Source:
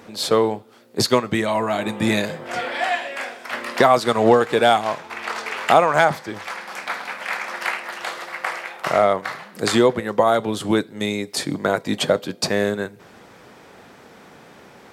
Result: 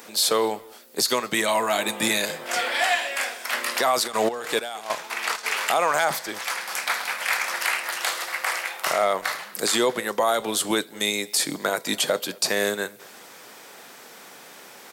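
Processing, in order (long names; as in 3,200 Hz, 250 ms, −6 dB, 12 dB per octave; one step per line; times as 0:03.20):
high-pass filter 110 Hz
RIAA equalisation recording
brickwall limiter −11 dBFS, peak gain reduction 11.5 dB
0:04.06–0:05.43: gate pattern "x.x..xxx." 98 BPM −12 dB
far-end echo of a speakerphone 220 ms, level −22 dB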